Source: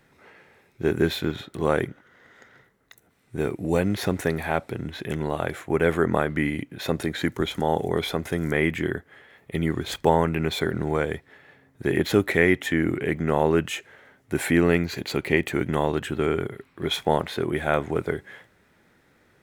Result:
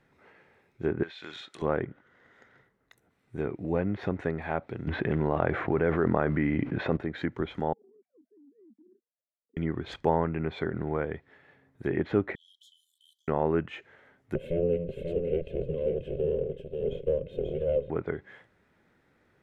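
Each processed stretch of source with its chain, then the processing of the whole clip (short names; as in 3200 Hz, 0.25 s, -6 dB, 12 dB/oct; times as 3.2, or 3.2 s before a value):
1.03–1.62 weighting filter ITU-R 468 + compressor 10:1, threshold -29 dBFS
4.87–6.97 companded quantiser 6-bit + bell 11000 Hz -9 dB 1.3 oct + fast leveller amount 70%
7.73–9.57 sine-wave speech + Butterworth band-pass 220 Hz, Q 3.3 + compressor, threshold -50 dBFS
12.35–13.28 brick-wall FIR high-pass 3000 Hz + compressor 4:1, threshold -46 dBFS
14.35–17.9 minimum comb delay 1.9 ms + EQ curve 100 Hz 0 dB, 160 Hz +8 dB, 340 Hz 0 dB, 530 Hz +11 dB, 830 Hz -26 dB, 1900 Hz -22 dB, 2900 Hz -1 dB, 4700 Hz -21 dB, 15000 Hz +8 dB + echo 0.537 s -5.5 dB
whole clip: treble ducked by the level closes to 2000 Hz, closed at -20.5 dBFS; high shelf 4400 Hz -10.5 dB; gain -5.5 dB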